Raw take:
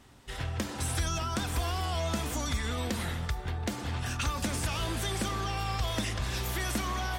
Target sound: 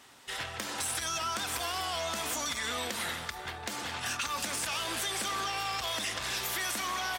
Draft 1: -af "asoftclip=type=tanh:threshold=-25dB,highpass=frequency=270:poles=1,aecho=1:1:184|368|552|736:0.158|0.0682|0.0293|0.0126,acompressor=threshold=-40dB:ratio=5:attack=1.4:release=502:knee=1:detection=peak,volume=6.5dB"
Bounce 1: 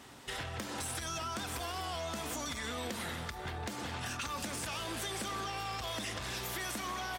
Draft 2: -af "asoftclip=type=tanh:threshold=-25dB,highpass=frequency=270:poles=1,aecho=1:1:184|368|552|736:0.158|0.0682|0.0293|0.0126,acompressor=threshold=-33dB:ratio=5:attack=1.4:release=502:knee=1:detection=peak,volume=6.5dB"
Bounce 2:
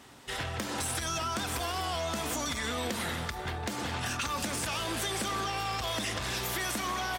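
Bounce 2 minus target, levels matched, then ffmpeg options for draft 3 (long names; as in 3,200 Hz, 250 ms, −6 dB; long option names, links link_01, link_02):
250 Hz band +7.0 dB
-af "asoftclip=type=tanh:threshold=-25dB,highpass=frequency=1000:poles=1,aecho=1:1:184|368|552|736:0.158|0.0682|0.0293|0.0126,acompressor=threshold=-33dB:ratio=5:attack=1.4:release=502:knee=1:detection=peak,volume=6.5dB"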